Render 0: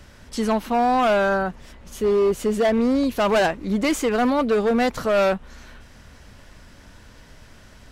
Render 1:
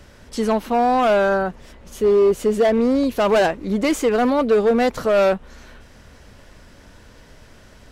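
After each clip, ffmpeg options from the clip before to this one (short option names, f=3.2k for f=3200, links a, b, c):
-af "equalizer=f=460:t=o:w=1.1:g=4.5"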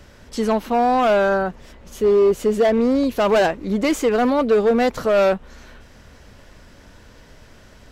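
-af "equalizer=f=9.4k:w=5.2:g=-5.5"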